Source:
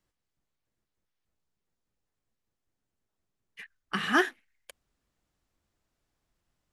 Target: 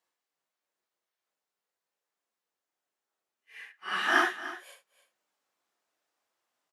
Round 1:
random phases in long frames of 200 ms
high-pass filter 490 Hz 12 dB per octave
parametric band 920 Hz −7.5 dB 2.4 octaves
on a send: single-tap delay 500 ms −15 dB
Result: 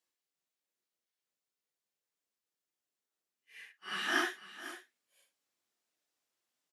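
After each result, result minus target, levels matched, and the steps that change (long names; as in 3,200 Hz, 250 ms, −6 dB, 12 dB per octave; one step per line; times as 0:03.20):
echo 203 ms late; 1,000 Hz band −2.0 dB
change: single-tap delay 297 ms −15 dB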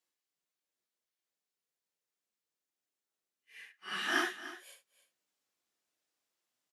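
1,000 Hz band −3.0 dB
change: parametric band 920 Hz +3 dB 2.4 octaves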